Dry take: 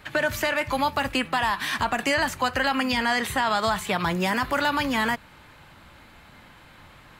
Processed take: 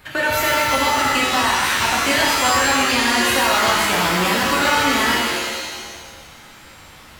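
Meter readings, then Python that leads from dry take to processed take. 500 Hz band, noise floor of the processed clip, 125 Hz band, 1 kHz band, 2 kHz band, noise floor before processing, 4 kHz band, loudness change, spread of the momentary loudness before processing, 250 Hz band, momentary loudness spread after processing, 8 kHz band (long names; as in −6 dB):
+5.5 dB, −43 dBFS, +4.0 dB, +7.0 dB, +7.5 dB, −51 dBFS, +11.0 dB, +8.0 dB, 3 LU, +4.5 dB, 7 LU, +15.5 dB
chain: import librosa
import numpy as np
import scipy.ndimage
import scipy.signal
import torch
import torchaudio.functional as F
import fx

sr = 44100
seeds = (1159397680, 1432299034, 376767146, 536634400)

y = fx.high_shelf(x, sr, hz=7600.0, db=8.5)
y = fx.rev_shimmer(y, sr, seeds[0], rt60_s=1.5, semitones=7, shimmer_db=-2, drr_db=-3.0)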